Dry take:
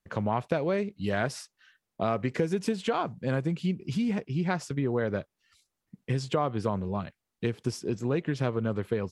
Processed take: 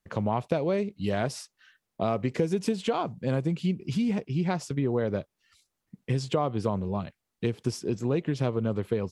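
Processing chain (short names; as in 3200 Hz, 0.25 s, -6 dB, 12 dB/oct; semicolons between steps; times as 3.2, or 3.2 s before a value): dynamic EQ 1600 Hz, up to -7 dB, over -47 dBFS, Q 1.6; gain +1.5 dB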